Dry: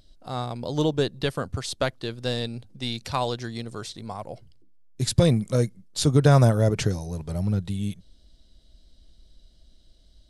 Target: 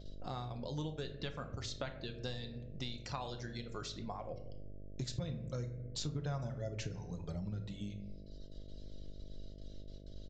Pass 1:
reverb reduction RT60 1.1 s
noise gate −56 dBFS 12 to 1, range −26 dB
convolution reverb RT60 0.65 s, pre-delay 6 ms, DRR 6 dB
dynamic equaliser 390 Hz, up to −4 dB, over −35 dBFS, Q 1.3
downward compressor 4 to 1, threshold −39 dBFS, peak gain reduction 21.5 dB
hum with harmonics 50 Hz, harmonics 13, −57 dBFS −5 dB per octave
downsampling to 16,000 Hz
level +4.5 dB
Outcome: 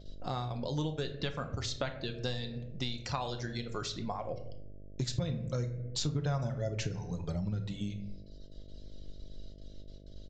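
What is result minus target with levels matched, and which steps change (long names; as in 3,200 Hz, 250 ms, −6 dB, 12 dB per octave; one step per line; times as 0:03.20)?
downward compressor: peak gain reduction −6.5 dB
change: downward compressor 4 to 1, threshold −47.5 dBFS, peak gain reduction 28 dB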